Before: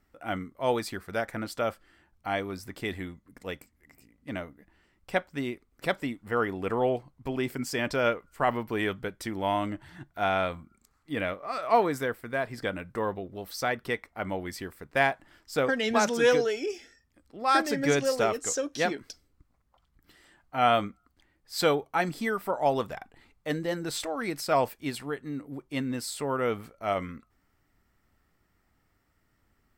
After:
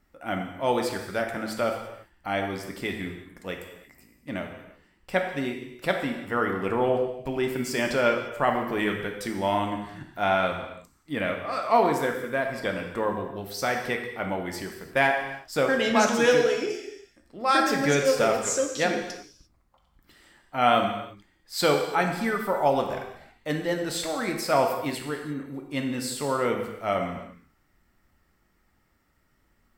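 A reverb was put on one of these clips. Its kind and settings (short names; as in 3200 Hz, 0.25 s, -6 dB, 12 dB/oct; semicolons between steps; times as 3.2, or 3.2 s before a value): non-linear reverb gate 0.37 s falling, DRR 2.5 dB; gain +1.5 dB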